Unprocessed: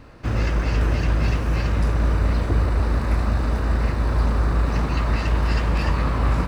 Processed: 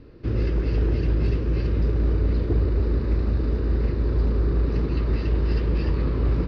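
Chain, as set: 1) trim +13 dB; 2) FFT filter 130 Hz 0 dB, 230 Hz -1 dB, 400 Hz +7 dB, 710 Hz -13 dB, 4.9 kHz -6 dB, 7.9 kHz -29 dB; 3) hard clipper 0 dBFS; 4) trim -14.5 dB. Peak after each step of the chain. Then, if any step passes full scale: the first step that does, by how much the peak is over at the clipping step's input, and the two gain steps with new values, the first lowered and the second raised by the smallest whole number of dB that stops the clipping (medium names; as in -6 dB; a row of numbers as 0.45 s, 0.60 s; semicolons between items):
+4.0 dBFS, +4.0 dBFS, 0.0 dBFS, -14.5 dBFS; step 1, 4.0 dB; step 1 +9 dB, step 4 -10.5 dB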